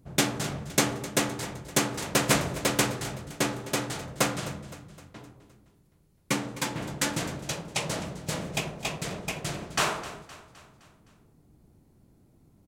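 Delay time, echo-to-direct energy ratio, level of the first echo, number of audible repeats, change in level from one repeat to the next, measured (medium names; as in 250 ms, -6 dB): 258 ms, -15.0 dB, -16.5 dB, 4, -5.5 dB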